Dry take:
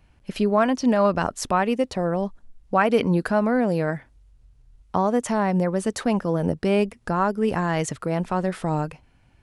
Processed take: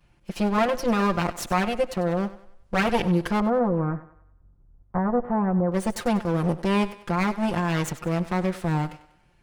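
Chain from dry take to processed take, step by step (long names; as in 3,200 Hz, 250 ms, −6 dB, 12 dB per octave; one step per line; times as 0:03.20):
lower of the sound and its delayed copy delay 5.7 ms
0:03.40–0:05.72: low-pass filter 1,300 Hz 24 dB per octave
feedback echo with a high-pass in the loop 96 ms, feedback 44%, high-pass 280 Hz, level −15 dB
level −1 dB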